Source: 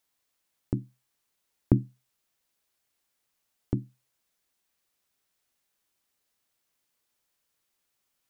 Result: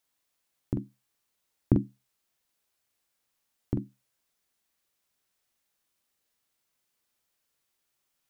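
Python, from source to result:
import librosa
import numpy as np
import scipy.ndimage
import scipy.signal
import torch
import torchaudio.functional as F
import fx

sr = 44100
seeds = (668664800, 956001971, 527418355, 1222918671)

y = fx.doubler(x, sr, ms=44.0, db=-6.0)
y = y * librosa.db_to_amplitude(-1.5)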